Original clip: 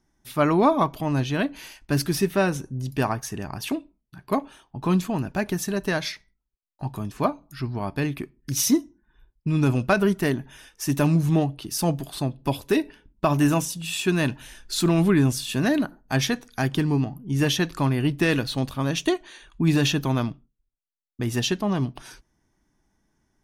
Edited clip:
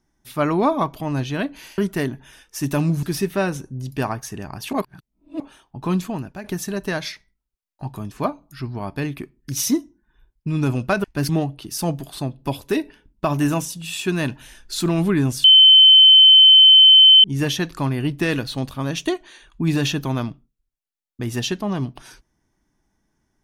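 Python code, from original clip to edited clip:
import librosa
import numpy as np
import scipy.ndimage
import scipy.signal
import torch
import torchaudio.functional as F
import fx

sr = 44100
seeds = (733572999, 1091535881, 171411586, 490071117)

y = fx.edit(x, sr, fx.swap(start_s=1.78, length_s=0.25, other_s=10.04, other_length_s=1.25),
    fx.reverse_span(start_s=3.73, length_s=0.67),
    fx.fade_out_to(start_s=5.08, length_s=0.36, floor_db=-11.5),
    fx.bleep(start_s=15.44, length_s=1.8, hz=3070.0, db=-6.0), tone=tone)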